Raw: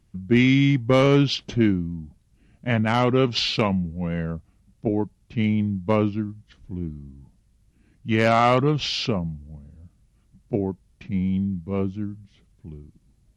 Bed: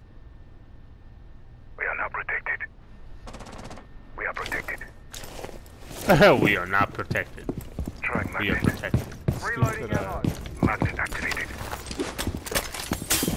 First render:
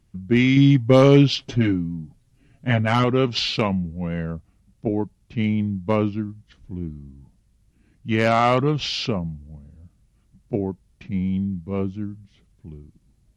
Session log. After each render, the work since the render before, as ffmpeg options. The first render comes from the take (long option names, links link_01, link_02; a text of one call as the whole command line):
ffmpeg -i in.wav -filter_complex "[0:a]asettb=1/sr,asplit=3[link_01][link_02][link_03];[link_01]atrim=end=0.564[link_04];[link_02]atrim=start=0.56:end=3.04,asetpts=PTS-STARTPTS,afade=type=in:duration=0.004:curve=qsin,afade=type=out:start_time=2.476:duration=0.004:curve=qsin,aecho=1:1:7.4:0.72,atrim=end_sample=109368[link_05];[link_03]atrim=start=3.036[link_06];[link_04][link_05]acrossfade=duration=0.004:curve1=hsin:curve2=qsin[link_07];[link_07][link_06]acrossfade=duration=0.004:curve1=qsin:curve2=hsin" out.wav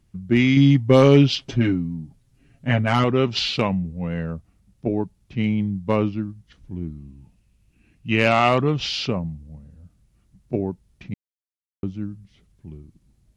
ffmpeg -i in.wav -filter_complex "[0:a]asettb=1/sr,asplit=3[link_01][link_02][link_03];[link_01]atrim=end=6.984[link_04];[link_02]atrim=start=6.98:end=8.49,asetpts=PTS-STARTPTS,afade=type=in:duration=0.004:curve=qsin,afade=type=out:start_time=1.506:duration=0.004:curve=qsin,equalizer=frequency=2600:width_type=o:width=0.29:gain=11.5[link_05];[link_03]atrim=start=8.486[link_06];[link_04][link_05]acrossfade=duration=0.004:curve1=hsin:curve2=qsin[link_07];[link_07][link_06]acrossfade=duration=0.004:curve1=qsin:curve2=hsin,asplit=3[link_08][link_09][link_10];[link_08]atrim=end=11.14,asetpts=PTS-STARTPTS,afade=type=out:start_time=11.136:duration=0.004:curve=hsin[link_11];[link_09]atrim=start=11.14:end=11.83,asetpts=PTS-STARTPTS,volume=0[link_12];[link_10]atrim=start=11.83,asetpts=PTS-STARTPTS,afade=type=in:duration=0.004:curve=hsin[link_13];[link_11][link_12][link_13]concat=n=3:v=0:a=1" out.wav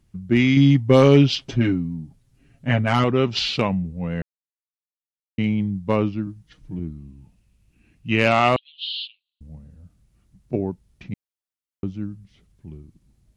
ffmpeg -i in.wav -filter_complex "[0:a]asettb=1/sr,asplit=3[link_01][link_02][link_03];[link_01]atrim=end=6.264[link_04];[link_02]atrim=start=6.26:end=6.79,asetpts=PTS-STARTPTS,afade=type=in:duration=0.004:curve=qsin,afade=type=out:start_time=0.526:duration=0.004:curve=qsin,aecho=1:1:6.5:0.65,atrim=end_sample=23373[link_05];[link_03]atrim=start=6.786[link_06];[link_04][link_05]acrossfade=duration=0.004:curve1=hsin:curve2=qsin[link_07];[link_07][link_06]acrossfade=duration=0.004:curve1=qsin:curve2=hsin,asettb=1/sr,asplit=3[link_08][link_09][link_10];[link_08]atrim=end=8.564[link_11];[link_09]atrim=start=8.56:end=9.41,asetpts=PTS-STARTPTS,afade=type=in:duration=0.004:curve=qsin,afade=type=out:start_time=0.846:duration=0.004:curve=qsin,asuperpass=centerf=3500:order=8:qfactor=2.4[link_12];[link_10]atrim=start=9.406[link_13];[link_11][link_12]acrossfade=duration=0.004:curve1=hsin:curve2=qsin[link_14];[link_14][link_13]acrossfade=duration=0.004:curve1=qsin:curve2=hsin,asplit=3[link_15][link_16][link_17];[link_15]atrim=end=4.22,asetpts=PTS-STARTPTS,afade=type=out:start_time=4.216:duration=0.004:curve=hsin[link_18];[link_16]atrim=start=4.22:end=5.38,asetpts=PTS-STARTPTS,volume=0[link_19];[link_17]atrim=start=5.38,asetpts=PTS-STARTPTS,afade=type=in:duration=0.004:curve=hsin[link_20];[link_18][link_19][link_20]concat=n=3:v=0:a=1" out.wav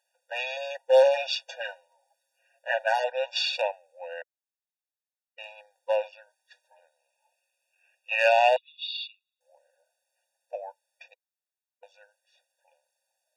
ffmpeg -i in.wav -filter_complex "[0:a]acrossover=split=450[link_01][link_02];[link_01]aeval=exprs='clip(val(0),-1,0.133)':channel_layout=same[link_03];[link_03][link_02]amix=inputs=2:normalize=0,afftfilt=real='re*eq(mod(floor(b*sr/1024/480),2),1)':imag='im*eq(mod(floor(b*sr/1024/480),2),1)':win_size=1024:overlap=0.75" out.wav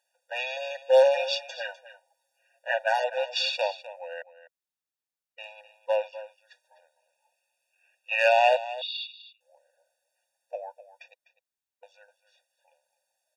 ffmpeg -i in.wav -af "aecho=1:1:252:0.178" out.wav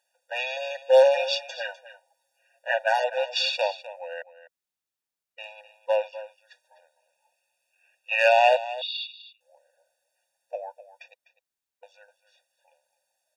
ffmpeg -i in.wav -af "volume=2dB" out.wav